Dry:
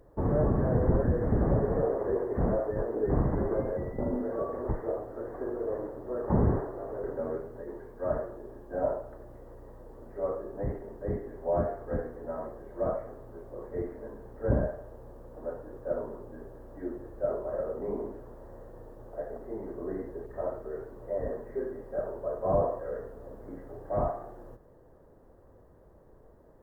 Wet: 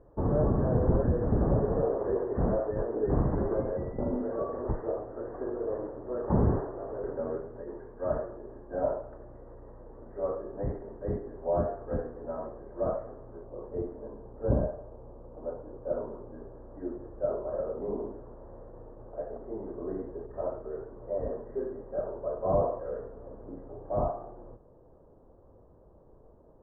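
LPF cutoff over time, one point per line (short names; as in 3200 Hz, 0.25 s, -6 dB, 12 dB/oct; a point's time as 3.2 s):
LPF 24 dB/oct
1500 Hz
from 2.04 s 1700 Hz
from 11.18 s 1500 Hz
from 13.45 s 1200 Hz
from 15.93 s 1400 Hz
from 23.44 s 1200 Hz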